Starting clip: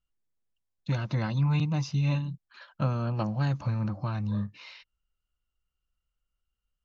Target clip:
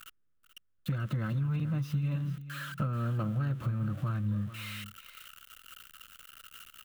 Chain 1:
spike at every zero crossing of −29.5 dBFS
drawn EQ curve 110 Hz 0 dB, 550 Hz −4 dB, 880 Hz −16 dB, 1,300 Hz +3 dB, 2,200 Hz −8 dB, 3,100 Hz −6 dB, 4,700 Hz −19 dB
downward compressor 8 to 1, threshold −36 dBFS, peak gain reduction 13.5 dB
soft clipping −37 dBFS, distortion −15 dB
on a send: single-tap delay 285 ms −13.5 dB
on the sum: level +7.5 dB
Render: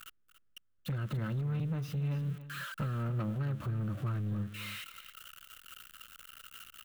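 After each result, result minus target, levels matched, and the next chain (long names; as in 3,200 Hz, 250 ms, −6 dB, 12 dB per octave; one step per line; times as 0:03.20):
soft clipping: distortion +15 dB; echo 149 ms early
spike at every zero crossing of −29.5 dBFS
drawn EQ curve 110 Hz 0 dB, 550 Hz −4 dB, 880 Hz −16 dB, 1,300 Hz +3 dB, 2,200 Hz −8 dB, 3,100 Hz −6 dB, 4,700 Hz −19 dB
downward compressor 8 to 1, threshold −36 dBFS, peak gain reduction 13.5 dB
soft clipping −27 dBFS, distortion −29 dB
on a send: single-tap delay 285 ms −13.5 dB
on the sum: level +7.5 dB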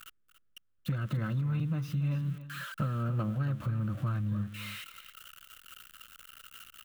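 echo 149 ms early
spike at every zero crossing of −29.5 dBFS
drawn EQ curve 110 Hz 0 dB, 550 Hz −4 dB, 880 Hz −16 dB, 1,300 Hz +3 dB, 2,200 Hz −8 dB, 3,100 Hz −6 dB, 4,700 Hz −19 dB
downward compressor 8 to 1, threshold −36 dBFS, peak gain reduction 13.5 dB
soft clipping −27 dBFS, distortion −29 dB
on a send: single-tap delay 434 ms −13.5 dB
on the sum: level +7.5 dB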